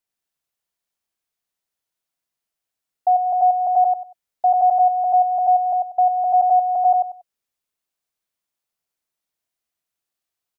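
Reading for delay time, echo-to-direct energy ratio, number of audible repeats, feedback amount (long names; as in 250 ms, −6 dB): 95 ms, −3.0 dB, 3, 23%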